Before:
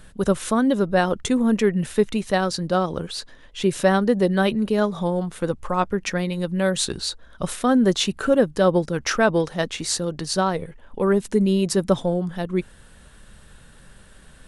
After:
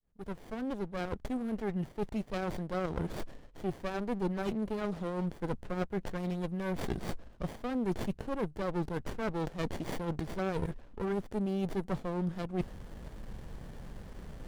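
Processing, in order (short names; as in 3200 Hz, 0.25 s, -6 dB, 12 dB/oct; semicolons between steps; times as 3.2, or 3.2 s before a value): opening faded in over 3.68 s; notch 2200 Hz, Q 7.4; reverse; compressor 6:1, threshold -35 dBFS, peak gain reduction 21 dB; reverse; running maximum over 33 samples; gain +4.5 dB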